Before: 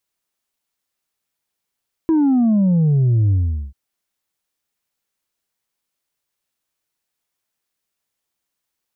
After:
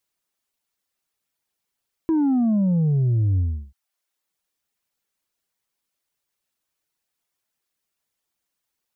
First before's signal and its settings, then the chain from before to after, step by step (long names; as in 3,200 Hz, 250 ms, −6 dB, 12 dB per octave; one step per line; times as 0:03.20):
bass drop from 330 Hz, over 1.64 s, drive 2.5 dB, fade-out 0.42 s, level −12.5 dB
reverb reduction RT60 0.52 s
brickwall limiter −17 dBFS